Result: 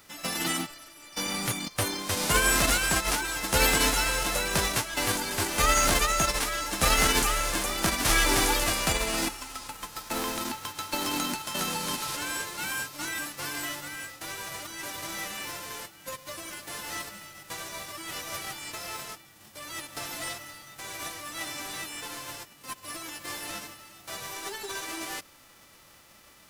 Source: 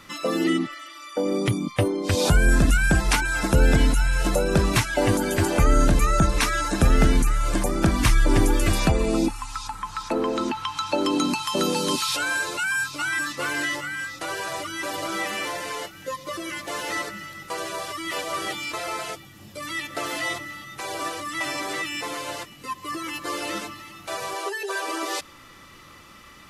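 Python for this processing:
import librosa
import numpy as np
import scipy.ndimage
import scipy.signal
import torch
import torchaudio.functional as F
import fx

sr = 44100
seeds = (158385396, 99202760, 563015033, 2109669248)

p1 = fx.envelope_flatten(x, sr, power=0.3)
p2 = fx.sample_hold(p1, sr, seeds[0], rate_hz=4500.0, jitter_pct=20)
p3 = p1 + (p2 * librosa.db_to_amplitude(-8.5))
y = p3 * librosa.db_to_amplitude(-8.5)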